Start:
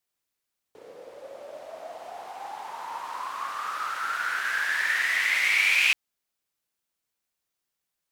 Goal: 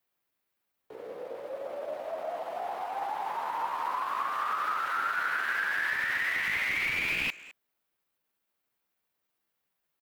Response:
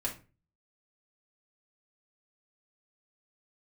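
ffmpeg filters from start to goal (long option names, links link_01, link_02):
-filter_complex "[0:a]acrossover=split=880[link_01][link_02];[link_02]aeval=exprs='clip(val(0),-1,0.1)':channel_layout=same[link_03];[link_01][link_03]amix=inputs=2:normalize=0,lowshelf=frequency=68:gain=-10,alimiter=limit=-18.5dB:level=0:latency=1:release=53,equalizer=frequency=6900:width=0.61:gain=-11.5,acrossover=split=430[link_04][link_05];[link_05]acompressor=threshold=-34dB:ratio=3[link_06];[link_04][link_06]amix=inputs=2:normalize=0,atempo=0.81,asplit=2[link_07][link_08];[link_08]adelay=210,highpass=300,lowpass=3400,asoftclip=type=hard:threshold=-36dB,volume=-15dB[link_09];[link_07][link_09]amix=inputs=2:normalize=0,volume=5.5dB"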